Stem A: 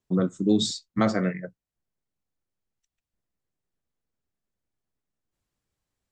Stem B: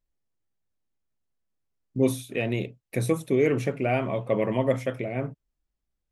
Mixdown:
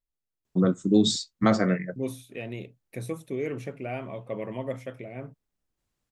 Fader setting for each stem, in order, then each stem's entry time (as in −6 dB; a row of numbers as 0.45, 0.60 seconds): +1.5, −9.0 decibels; 0.45, 0.00 seconds